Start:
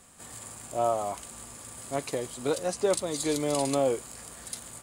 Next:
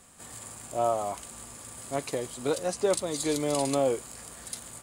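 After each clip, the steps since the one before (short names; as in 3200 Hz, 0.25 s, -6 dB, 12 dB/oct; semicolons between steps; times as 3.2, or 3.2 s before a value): nothing audible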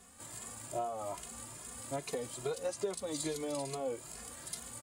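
compressor 12:1, threshold -30 dBFS, peak gain reduction 10.5 dB; endless flanger 2.4 ms +2.4 Hz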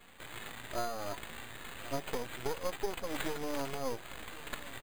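half-wave rectifier; echo 1.08 s -17.5 dB; careless resampling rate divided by 8×, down none, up hold; gain +4.5 dB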